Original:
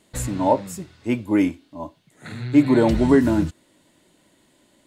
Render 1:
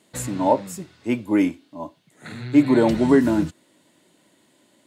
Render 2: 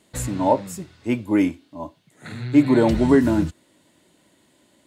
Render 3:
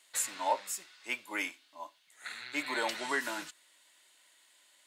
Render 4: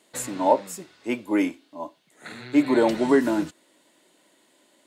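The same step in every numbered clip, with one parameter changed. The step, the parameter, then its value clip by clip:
HPF, cutoff: 130, 47, 1400, 330 Hz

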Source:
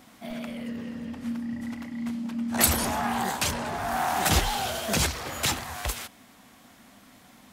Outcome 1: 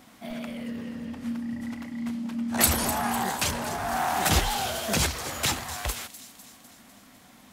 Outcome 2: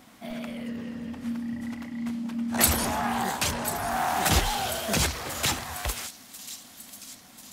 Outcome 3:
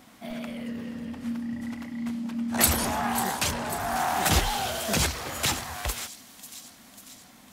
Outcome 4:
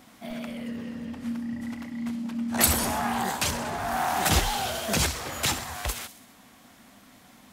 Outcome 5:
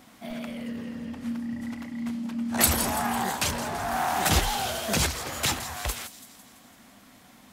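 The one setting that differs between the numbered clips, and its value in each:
thin delay, time: 251, 1041, 544, 65, 167 ms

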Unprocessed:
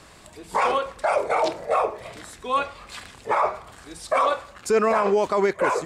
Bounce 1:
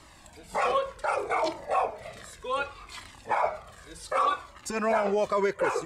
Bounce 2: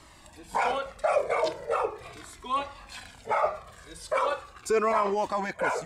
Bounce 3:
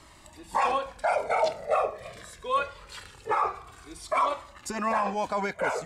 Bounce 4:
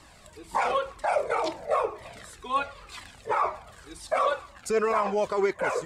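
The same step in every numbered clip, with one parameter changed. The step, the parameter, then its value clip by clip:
cascading flanger, rate: 0.66, 0.4, 0.23, 2 Hz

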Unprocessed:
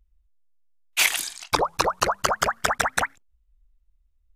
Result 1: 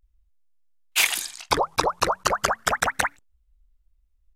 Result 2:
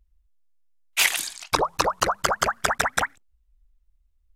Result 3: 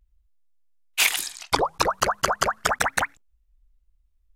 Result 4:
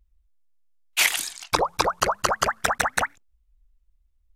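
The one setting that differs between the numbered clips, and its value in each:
vibrato, rate: 0.37, 13, 1.1, 6.5 Hz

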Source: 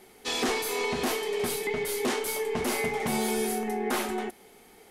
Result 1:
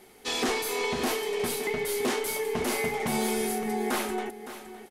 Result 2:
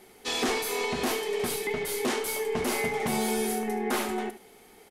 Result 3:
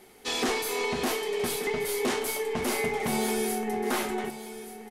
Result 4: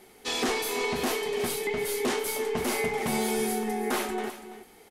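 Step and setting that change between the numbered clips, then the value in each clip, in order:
echo, time: 562, 74, 1181, 333 ms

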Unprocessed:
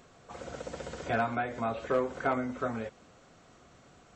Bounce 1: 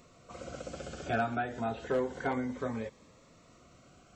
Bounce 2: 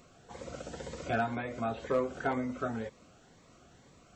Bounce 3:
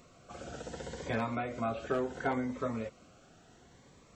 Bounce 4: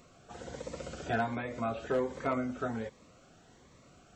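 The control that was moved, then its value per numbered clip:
cascading phaser, rate: 0.29, 2, 0.71, 1.3 Hz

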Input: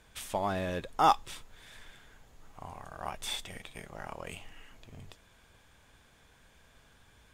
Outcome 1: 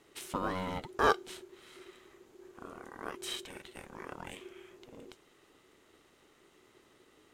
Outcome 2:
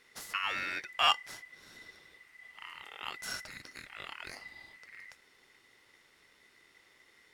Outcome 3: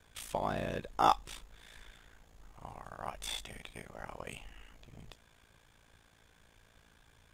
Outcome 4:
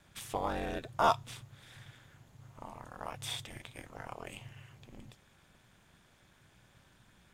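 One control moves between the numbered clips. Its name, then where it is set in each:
ring modulator, frequency: 370, 2000, 28, 120 Hz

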